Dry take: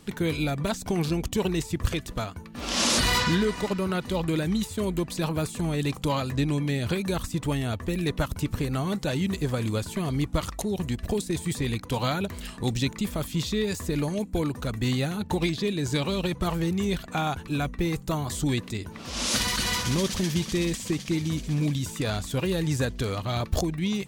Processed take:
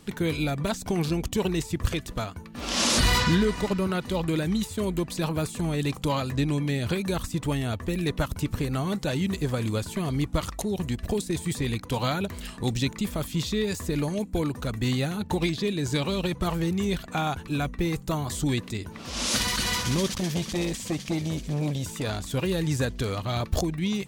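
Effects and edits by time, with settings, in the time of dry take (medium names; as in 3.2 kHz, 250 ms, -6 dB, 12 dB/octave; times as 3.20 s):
2.96–3.87 s: bass shelf 130 Hz +7 dB
20.09–22.32 s: transformer saturation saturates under 410 Hz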